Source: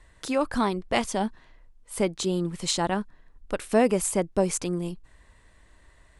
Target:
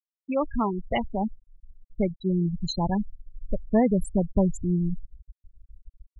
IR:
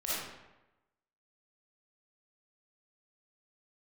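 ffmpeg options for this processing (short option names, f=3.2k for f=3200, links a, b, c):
-af "asubboost=boost=5.5:cutoff=170,afftfilt=real='re*gte(hypot(re,im),0.141)':imag='im*gte(hypot(re,im),0.141)':win_size=1024:overlap=0.75"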